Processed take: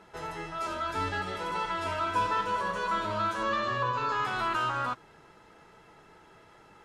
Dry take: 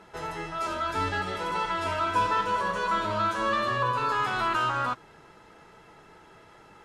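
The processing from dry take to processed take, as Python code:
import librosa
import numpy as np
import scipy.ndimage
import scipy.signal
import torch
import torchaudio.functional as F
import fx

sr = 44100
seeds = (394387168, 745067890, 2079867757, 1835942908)

y = fx.steep_lowpass(x, sr, hz=7700.0, slope=96, at=(3.43, 4.25))
y = y * 10.0 ** (-3.0 / 20.0)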